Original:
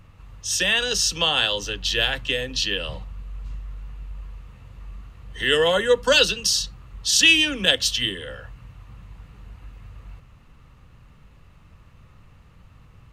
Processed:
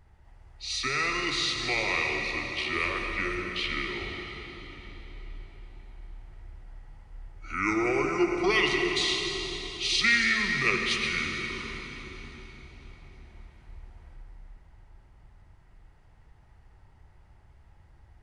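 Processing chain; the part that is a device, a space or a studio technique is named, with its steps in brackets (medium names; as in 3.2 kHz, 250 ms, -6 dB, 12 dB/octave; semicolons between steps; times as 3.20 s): slowed and reverbed (tape speed -28%; reverberation RT60 4.2 s, pre-delay 72 ms, DRR 2 dB); trim -8.5 dB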